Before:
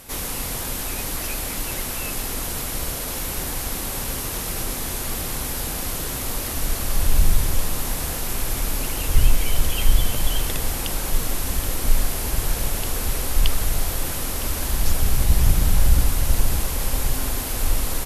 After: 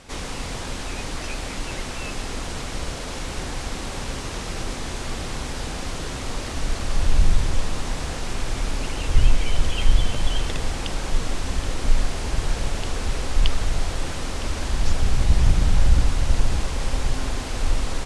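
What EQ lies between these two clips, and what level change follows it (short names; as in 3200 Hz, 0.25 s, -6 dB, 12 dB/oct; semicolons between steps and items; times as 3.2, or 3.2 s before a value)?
Bessel low-pass 5600 Hz, order 8; 0.0 dB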